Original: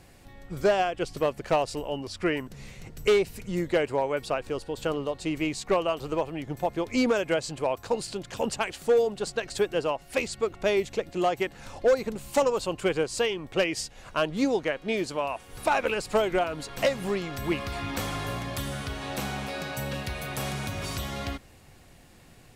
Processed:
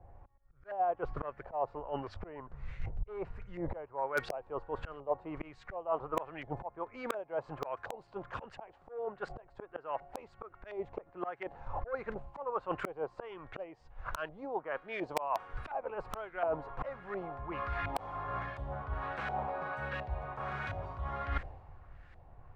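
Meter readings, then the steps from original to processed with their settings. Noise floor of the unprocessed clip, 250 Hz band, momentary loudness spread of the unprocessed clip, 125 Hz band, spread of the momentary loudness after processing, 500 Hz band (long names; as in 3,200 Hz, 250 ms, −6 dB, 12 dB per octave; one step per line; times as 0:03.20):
−53 dBFS, −15.5 dB, 9 LU, −8.5 dB, 12 LU, −12.5 dB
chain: parametric band 230 Hz −11.5 dB 1.7 octaves
volume swells 627 ms
reversed playback
downward compressor 16 to 1, threshold −44 dBFS, peak gain reduction 18 dB
reversed playback
auto-filter low-pass saw up 1.4 Hz 720–1,700 Hz
in parallel at −8.5 dB: wrap-around overflow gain 32 dB
on the sum: multiband upward and downward expander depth 100%
level +6 dB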